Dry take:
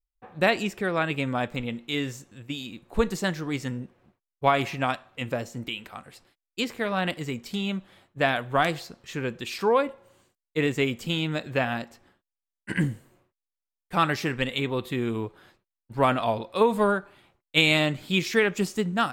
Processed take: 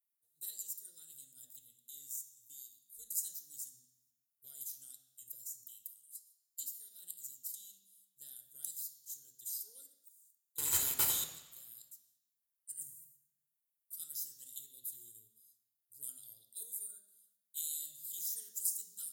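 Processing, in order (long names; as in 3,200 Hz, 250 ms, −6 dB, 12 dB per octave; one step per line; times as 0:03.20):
inverse Chebyshev high-pass filter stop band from 2,600 Hz, stop band 70 dB
in parallel at +3 dB: output level in coarse steps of 12 dB
0:10.58–0:11.24: on the sum: leveller curve on the samples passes 5
convolution reverb RT60 1.1 s, pre-delay 3 ms, DRR 2 dB
level +7.5 dB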